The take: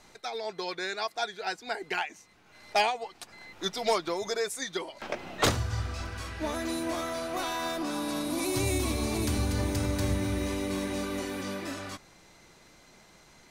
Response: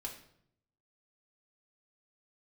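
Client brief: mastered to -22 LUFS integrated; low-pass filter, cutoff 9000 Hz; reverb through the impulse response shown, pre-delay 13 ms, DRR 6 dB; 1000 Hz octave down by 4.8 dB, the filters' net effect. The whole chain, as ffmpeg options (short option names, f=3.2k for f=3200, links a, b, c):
-filter_complex "[0:a]lowpass=9k,equalizer=f=1k:t=o:g=-6.5,asplit=2[a][b];[1:a]atrim=start_sample=2205,adelay=13[c];[b][c]afir=irnorm=-1:irlink=0,volume=-4.5dB[d];[a][d]amix=inputs=2:normalize=0,volume=9.5dB"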